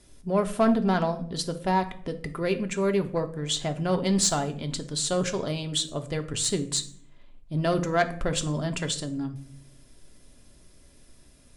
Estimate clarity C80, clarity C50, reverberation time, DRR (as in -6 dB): 19.0 dB, 14.5 dB, 0.60 s, 6.0 dB